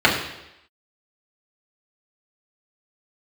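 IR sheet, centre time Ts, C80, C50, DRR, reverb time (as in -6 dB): 34 ms, 8.0 dB, 5.5 dB, -5.5 dB, 0.85 s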